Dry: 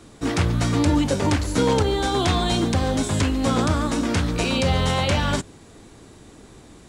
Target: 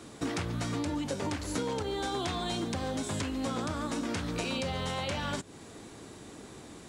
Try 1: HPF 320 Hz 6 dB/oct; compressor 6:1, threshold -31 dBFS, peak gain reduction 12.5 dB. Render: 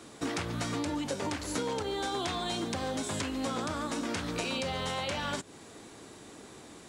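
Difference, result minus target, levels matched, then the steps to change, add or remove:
125 Hz band -3.5 dB
change: HPF 140 Hz 6 dB/oct

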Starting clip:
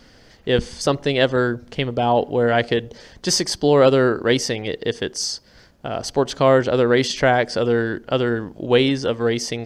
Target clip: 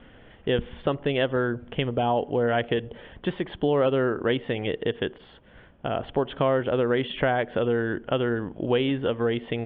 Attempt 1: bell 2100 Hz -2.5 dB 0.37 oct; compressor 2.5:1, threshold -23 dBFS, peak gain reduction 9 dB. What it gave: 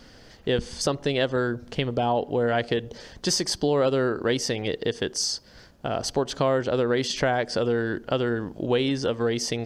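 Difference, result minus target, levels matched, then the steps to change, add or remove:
4000 Hz band +5.0 dB
add after compressor: steep low-pass 3400 Hz 96 dB/oct

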